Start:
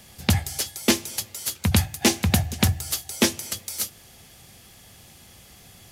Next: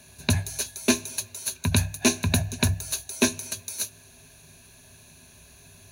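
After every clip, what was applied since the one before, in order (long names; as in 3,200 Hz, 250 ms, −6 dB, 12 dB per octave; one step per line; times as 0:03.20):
EQ curve with evenly spaced ripples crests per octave 1.5, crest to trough 14 dB
level −4.5 dB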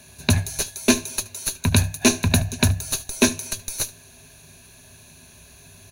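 in parallel at −7 dB: comparator with hysteresis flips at −19.5 dBFS
on the sum: single-tap delay 74 ms −20.5 dB
level +3.5 dB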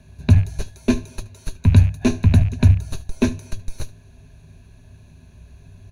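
loose part that buzzes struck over −26 dBFS, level −21 dBFS
RIAA equalisation playback
level −5.5 dB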